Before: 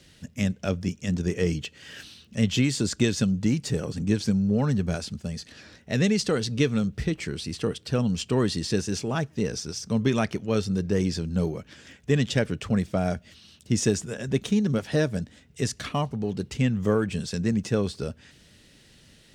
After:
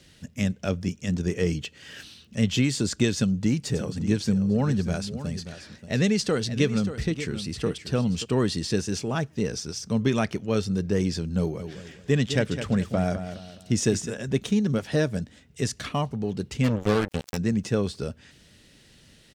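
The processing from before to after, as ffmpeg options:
-filter_complex "[0:a]asplit=3[a][b][c];[a]afade=t=out:st=3.74:d=0.02[d];[b]aecho=1:1:582:0.251,afade=t=in:st=3.74:d=0.02,afade=t=out:st=8.24:d=0.02[e];[c]afade=t=in:st=8.24:d=0.02[f];[d][e][f]amix=inputs=3:normalize=0,asplit=3[g][h][i];[g]afade=t=out:st=11.59:d=0.02[j];[h]aecho=1:1:208|416|624|832:0.316|0.111|0.0387|0.0136,afade=t=in:st=11.59:d=0.02,afade=t=out:st=14.09:d=0.02[k];[i]afade=t=in:st=14.09:d=0.02[l];[j][k][l]amix=inputs=3:normalize=0,asplit=3[m][n][o];[m]afade=t=out:st=16.63:d=0.02[p];[n]acrusher=bits=3:mix=0:aa=0.5,afade=t=in:st=16.63:d=0.02,afade=t=out:st=17.36:d=0.02[q];[o]afade=t=in:st=17.36:d=0.02[r];[p][q][r]amix=inputs=3:normalize=0"

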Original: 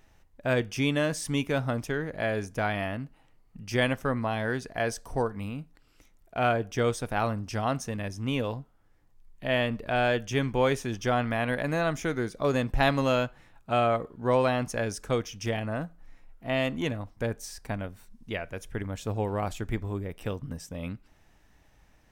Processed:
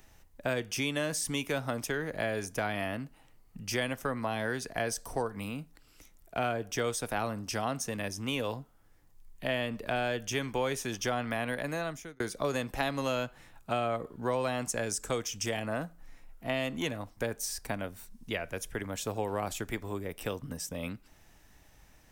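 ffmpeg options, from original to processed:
-filter_complex "[0:a]asettb=1/sr,asplit=3[a][b][c];[a]atrim=end=14.464[d];[b]atrim=start=14.46:end=15.62,asetpts=PTS-STARTPTS,afade=t=in:d=0.004:c=qsin,afade=t=out:st=1.156:d=0.004:c=qsin,equalizer=f=7.6k:w=4.7:g=11[e];[c]atrim=start=15.616[f];[d][e]acrossfade=d=0.004:c1=hsin:c2=qsin[g];[g][f]acrossfade=d=0.004:c1=qsin:c2=hsin,asplit=2[h][i];[h]atrim=end=12.2,asetpts=PTS-STARTPTS,afade=t=out:st=11.31:d=0.89[j];[i]atrim=start=12.2,asetpts=PTS-STARTPTS,afade=t=in:d=0.004:c=hsin[k];[j][k]concat=n=2:v=0:a=1,highshelf=f=5.5k:g=10,acrossover=split=200|440[l][m][n];[l]acompressor=threshold=-45dB:ratio=4[o];[m]acompressor=threshold=-39dB:ratio=4[p];[n]acompressor=threshold=-32dB:ratio=4[q];[o][p][q]amix=inputs=3:normalize=0,volume=1dB"

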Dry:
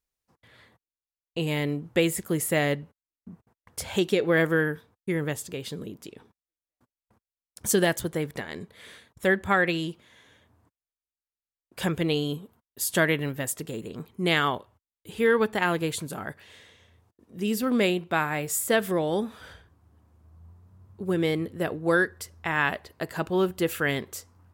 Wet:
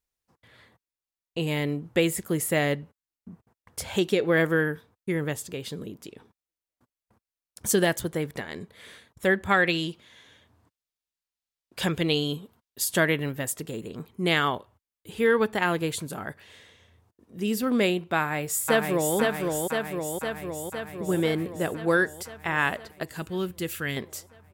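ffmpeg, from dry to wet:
-filter_complex "[0:a]asettb=1/sr,asplit=3[a][b][c];[a]atrim=end=9.494[d];[b]atrim=start=9.49:end=12.85,asetpts=PTS-STARTPTS,afade=t=in:d=0.004:c=qsin,afade=t=out:st=3.356:d=0.004:c=qsin,equalizer=f=4k:t=o:w=1.6:g=5.5[e];[c]atrim=start=12.846[f];[d][e]acrossfade=d=0.004:c1=hsin:c2=qsin[g];[g][f]acrossfade=d=0.004:c1=qsin:c2=hsin,asplit=2[h][i];[i]afade=t=in:st=18.17:d=0.01,afade=t=out:st=19.16:d=0.01,aecho=0:1:510|1020|1530|2040|2550|3060|3570|4080|4590|5100|5610|6120:0.707946|0.495562|0.346893|0.242825|0.169978|0.118984|0.0832891|0.0583024|0.0408117|0.0285682|0.0199977|0.0139984[j];[h][j]amix=inputs=2:normalize=0,asettb=1/sr,asplit=3[k][l][m];[k]atrim=end=23.034[n];[l]atrim=start=23.03:end=23.97,asetpts=PTS-STARTPTS,afade=t=in:d=0.004:c=qsin,afade=t=out:st=0.936:d=0.004:c=qsin,equalizer=f=710:t=o:w=2.5:g=-10[o];[m]atrim=start=23.966[p];[n][o]acrossfade=d=0.004:c1=hsin:c2=qsin[q];[q][p]acrossfade=d=0.004:c1=qsin:c2=hsin"

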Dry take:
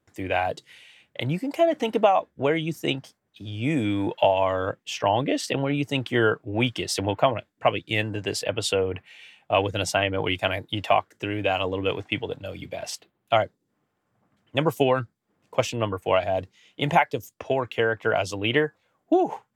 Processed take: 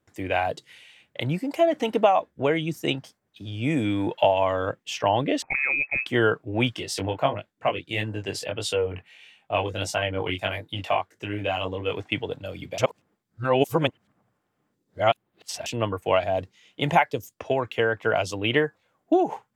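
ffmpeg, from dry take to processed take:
-filter_complex "[0:a]asettb=1/sr,asplit=3[a][b][c];[a]atrim=end=5.424[d];[b]atrim=start=5.42:end=6.06,asetpts=PTS-STARTPTS,afade=t=in:d=0.004:c=qsin,afade=t=out:st=0.636:d=0.004:c=qsin,lowpass=f=2.3k:t=q:w=0.5098,lowpass=f=2.3k:t=q:w=0.6013,lowpass=f=2.3k:t=q:w=0.9,lowpass=f=2.3k:t=q:w=2.563,afreqshift=-2700[e];[c]atrim=start=6.056[f];[d][e]acrossfade=d=0.004:c1=hsin:c2=qsin[g];[g][f]acrossfade=d=0.004:c1=qsin:c2=hsin,asplit=3[h][i][j];[h]afade=t=out:st=6.75:d=0.02[k];[i]flanger=delay=18.5:depth=3.8:speed=1.6,afade=t=in:st=6.75:d=0.02,afade=t=out:st=11.95:d=0.02[l];[j]afade=t=in:st=11.95:d=0.02[m];[k][l][m]amix=inputs=3:normalize=0,asplit=3[n][o][p];[n]atrim=end=12.782[q];[o]atrim=start=12.778:end=15.662,asetpts=PTS-STARTPTS,areverse[r];[p]atrim=start=15.658[s];[q][r]acrossfade=d=0.004:c1=hsin:c2=hsin[t];[t][s]acrossfade=d=0.004:c1=hsin:c2=hsin"

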